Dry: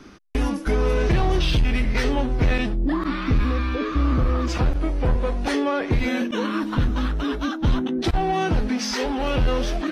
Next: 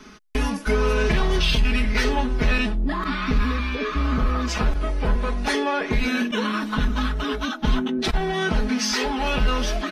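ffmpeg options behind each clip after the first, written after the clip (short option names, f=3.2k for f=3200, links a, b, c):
-filter_complex "[0:a]aecho=1:1:4.7:0.73,acrossover=split=890[a][b];[b]acontrast=29[c];[a][c]amix=inputs=2:normalize=0,volume=-3dB"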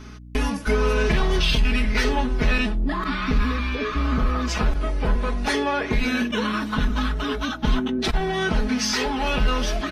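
-af "aeval=exprs='val(0)+0.01*(sin(2*PI*60*n/s)+sin(2*PI*2*60*n/s)/2+sin(2*PI*3*60*n/s)/3+sin(2*PI*4*60*n/s)/4+sin(2*PI*5*60*n/s)/5)':c=same"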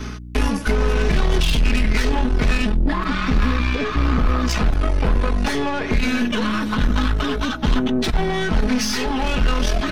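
-filter_complex "[0:a]areverse,acompressor=mode=upward:threshold=-26dB:ratio=2.5,areverse,aeval=exprs='0.355*(cos(1*acos(clip(val(0)/0.355,-1,1)))-cos(1*PI/2))+0.0501*(cos(5*acos(clip(val(0)/0.355,-1,1)))-cos(5*PI/2))+0.0398*(cos(8*acos(clip(val(0)/0.355,-1,1)))-cos(8*PI/2))':c=same,acrossover=split=270[a][b];[b]acompressor=threshold=-23dB:ratio=6[c];[a][c]amix=inputs=2:normalize=0,volume=1.5dB"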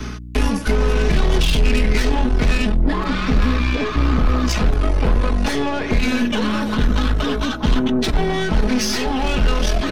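-filter_complex "[0:a]acrossover=split=320|900|2100[a][b][c][d];[b]aecho=1:1:880:0.668[e];[c]asoftclip=type=tanh:threshold=-30.5dB[f];[a][e][f][d]amix=inputs=4:normalize=0,volume=1.5dB"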